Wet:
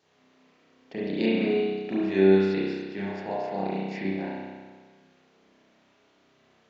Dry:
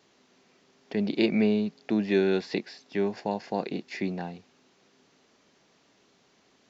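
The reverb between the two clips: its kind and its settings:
spring reverb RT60 1.5 s, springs 31 ms, chirp 40 ms, DRR −8 dB
level −7 dB

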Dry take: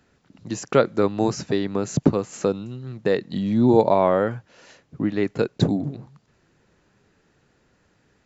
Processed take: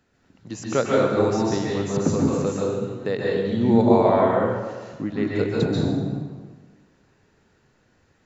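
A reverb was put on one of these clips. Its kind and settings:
dense smooth reverb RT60 1.4 s, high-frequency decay 0.7×, pre-delay 120 ms, DRR −4.5 dB
level −5 dB

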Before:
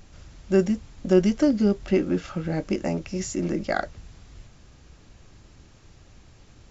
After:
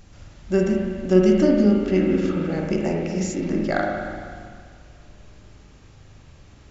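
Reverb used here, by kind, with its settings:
spring reverb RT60 2 s, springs 38/48 ms, chirp 40 ms, DRR −1 dB

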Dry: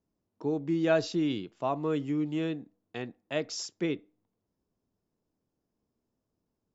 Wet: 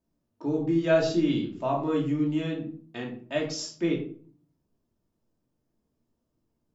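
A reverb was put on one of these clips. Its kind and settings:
rectangular room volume 420 cubic metres, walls furnished, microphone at 2.7 metres
level −1.5 dB

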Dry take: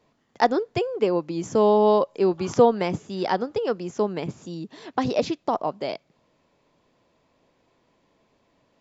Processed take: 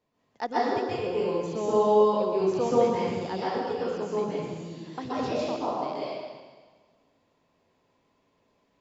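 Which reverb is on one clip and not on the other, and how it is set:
dense smooth reverb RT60 1.5 s, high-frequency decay 0.95×, pre-delay 115 ms, DRR −8.5 dB
level −13 dB

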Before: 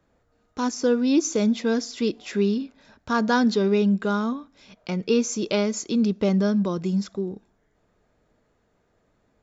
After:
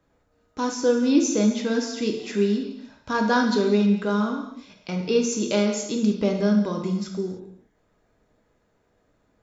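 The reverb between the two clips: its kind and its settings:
reverb whose tail is shaped and stops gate 340 ms falling, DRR 2 dB
level −1.5 dB

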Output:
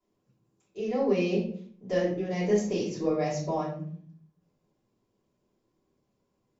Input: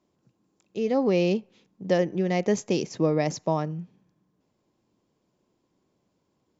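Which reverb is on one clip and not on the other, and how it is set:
rectangular room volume 63 cubic metres, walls mixed, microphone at 3.2 metres
level −17 dB

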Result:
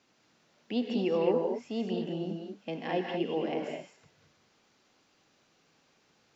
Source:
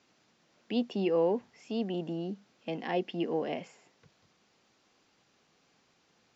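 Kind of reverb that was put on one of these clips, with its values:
reverb whose tail is shaped and stops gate 250 ms rising, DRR 1.5 dB
level −1 dB

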